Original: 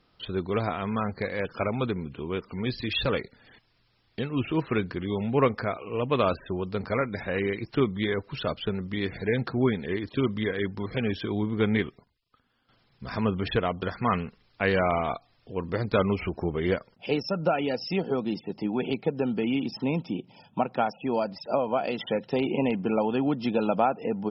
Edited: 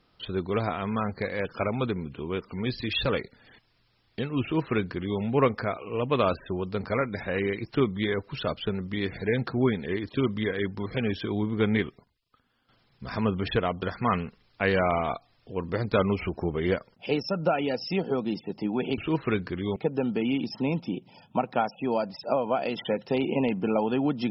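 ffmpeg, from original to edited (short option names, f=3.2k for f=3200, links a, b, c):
-filter_complex "[0:a]asplit=3[a][b][c];[a]atrim=end=18.982[d];[b]atrim=start=4.418:end=5.202[e];[c]atrim=start=18.978[f];[d][e]acrossfade=d=0.004:c1=hsin:c2=hsin[g];[g][f]acrossfade=d=0.004:c1=hsin:c2=hsin"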